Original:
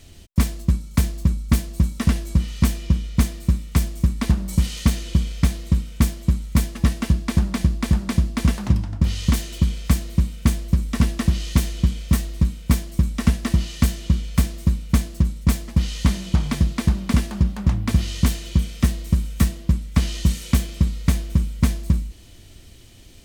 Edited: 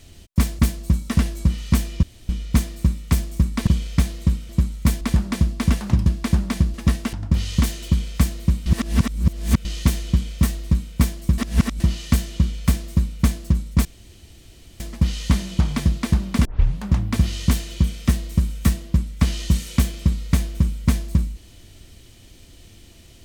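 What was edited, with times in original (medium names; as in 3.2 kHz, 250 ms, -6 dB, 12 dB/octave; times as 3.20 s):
0.59–1.49 s: delete
2.93 s: insert room tone 0.26 s
4.31–5.12 s: delete
5.94–6.19 s: delete
6.71–7.10 s: swap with 7.78–8.83 s
10.36–11.35 s: reverse
13.08–13.50 s: reverse
15.55 s: insert room tone 0.95 s
17.20 s: tape start 0.36 s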